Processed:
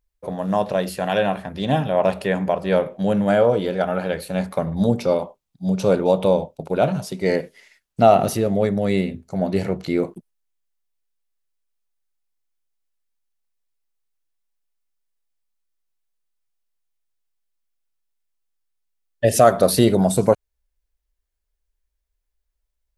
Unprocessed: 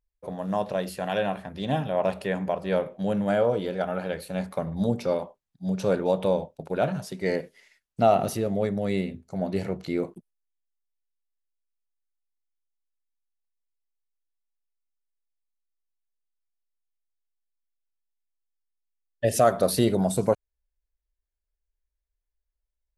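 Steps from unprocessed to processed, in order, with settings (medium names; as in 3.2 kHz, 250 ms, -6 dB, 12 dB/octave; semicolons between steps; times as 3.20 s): 5.03–7.30 s: peaking EQ 1.7 kHz -7 dB 0.37 oct; trim +6.5 dB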